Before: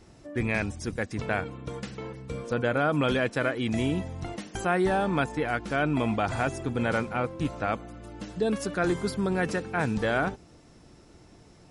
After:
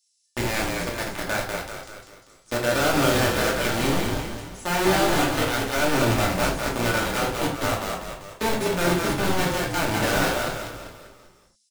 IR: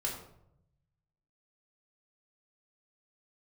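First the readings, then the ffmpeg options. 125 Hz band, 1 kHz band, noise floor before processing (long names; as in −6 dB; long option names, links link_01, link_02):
+3.0 dB, +5.5 dB, −54 dBFS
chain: -filter_complex "[0:a]acrossover=split=4600[link_01][link_02];[link_01]acrusher=bits=3:mix=0:aa=0.000001[link_03];[link_03][link_02]amix=inputs=2:normalize=0,asplit=7[link_04][link_05][link_06][link_07][link_08][link_09][link_10];[link_05]adelay=196,afreqshift=-36,volume=-3.5dB[link_11];[link_06]adelay=392,afreqshift=-72,volume=-9.9dB[link_12];[link_07]adelay=588,afreqshift=-108,volume=-16.3dB[link_13];[link_08]adelay=784,afreqshift=-144,volume=-22.6dB[link_14];[link_09]adelay=980,afreqshift=-180,volume=-29dB[link_15];[link_10]adelay=1176,afreqshift=-216,volume=-35.4dB[link_16];[link_04][link_11][link_12][link_13][link_14][link_15][link_16]amix=inputs=7:normalize=0[link_17];[1:a]atrim=start_sample=2205,atrim=end_sample=4410[link_18];[link_17][link_18]afir=irnorm=-1:irlink=0,volume=-1.5dB"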